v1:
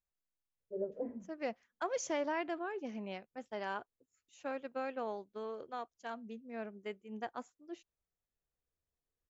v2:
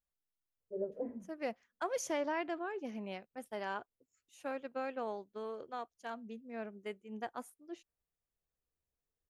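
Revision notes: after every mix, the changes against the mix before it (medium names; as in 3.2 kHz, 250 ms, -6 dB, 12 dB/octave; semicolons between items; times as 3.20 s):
master: remove brick-wall FIR low-pass 7.7 kHz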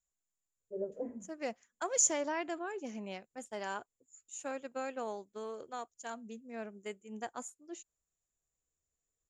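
master: add resonant low-pass 7.1 kHz, resonance Q 16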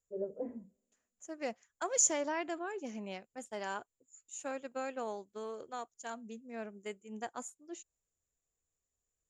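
first voice: entry -0.60 s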